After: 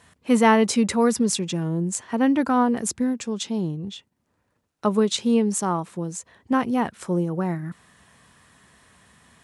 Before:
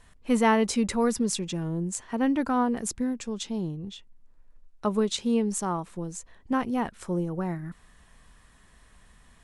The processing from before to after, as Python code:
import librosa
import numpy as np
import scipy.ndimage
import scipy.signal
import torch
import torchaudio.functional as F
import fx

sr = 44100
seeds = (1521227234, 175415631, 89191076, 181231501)

y = scipy.signal.sosfilt(scipy.signal.butter(4, 85.0, 'highpass', fs=sr, output='sos'), x)
y = y * librosa.db_to_amplitude(5.0)